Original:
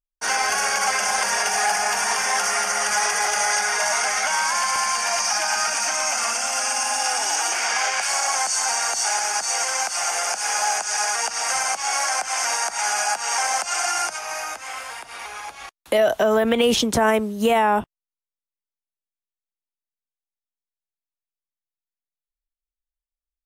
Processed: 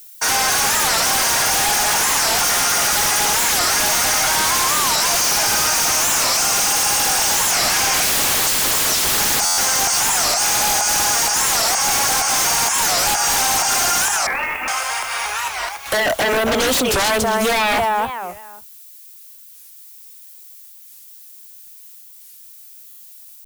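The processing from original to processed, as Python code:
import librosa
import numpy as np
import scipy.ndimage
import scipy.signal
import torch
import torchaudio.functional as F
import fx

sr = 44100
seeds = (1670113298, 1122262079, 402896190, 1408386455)

y = fx.peak_eq(x, sr, hz=250.0, db=-11.0, octaves=2.1)
y = fx.echo_feedback(y, sr, ms=268, feedback_pct=24, wet_db=-7.5)
y = fx.leveller(y, sr, passes=1, at=(7.94, 9.39))
y = fx.freq_invert(y, sr, carrier_hz=3400, at=(14.28, 14.68))
y = fx.dynamic_eq(y, sr, hz=2000.0, q=1.0, threshold_db=-36.0, ratio=4.0, max_db=-5)
y = fx.fold_sine(y, sr, drive_db=13, ceiling_db=-10.5)
y = fx.dmg_noise_colour(y, sr, seeds[0], colour='violet', level_db=-38.0)
y = fx.buffer_glitch(y, sr, at_s=(9.45, 22.88), block=512, repeats=10)
y = fx.record_warp(y, sr, rpm=45.0, depth_cents=250.0)
y = y * librosa.db_to_amplitude(-3.5)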